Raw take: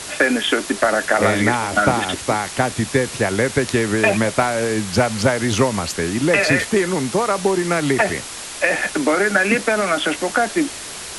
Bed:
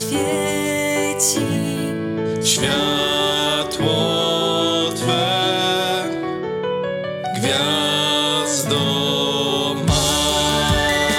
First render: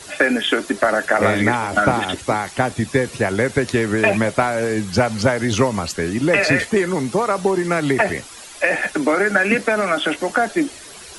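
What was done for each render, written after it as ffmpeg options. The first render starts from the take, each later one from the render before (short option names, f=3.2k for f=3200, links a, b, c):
-af "afftdn=nr=11:nf=-32"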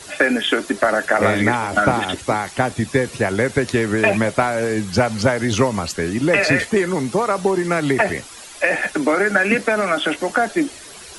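-af anull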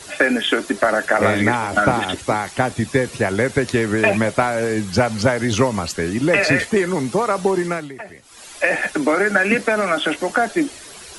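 -filter_complex "[0:a]asplit=3[a][b][c];[a]atrim=end=7.89,asetpts=PTS-STARTPTS,afade=t=out:st=7.62:d=0.27:silence=0.141254[d];[b]atrim=start=7.89:end=8.22,asetpts=PTS-STARTPTS,volume=-17dB[e];[c]atrim=start=8.22,asetpts=PTS-STARTPTS,afade=t=in:d=0.27:silence=0.141254[f];[d][e][f]concat=n=3:v=0:a=1"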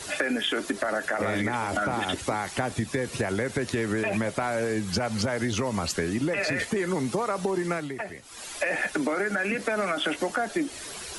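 -af "alimiter=limit=-10.5dB:level=0:latency=1,acompressor=threshold=-24dB:ratio=6"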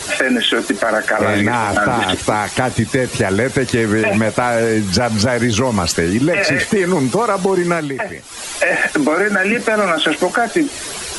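-af "volume=12dB,alimiter=limit=-3dB:level=0:latency=1"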